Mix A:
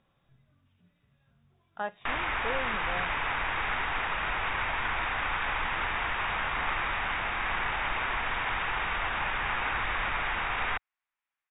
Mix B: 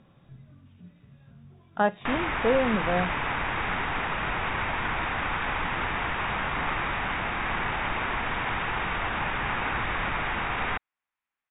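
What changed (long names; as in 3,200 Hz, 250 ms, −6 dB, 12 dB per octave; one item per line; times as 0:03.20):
speech +7.5 dB
master: add parametric band 190 Hz +10 dB 2.8 octaves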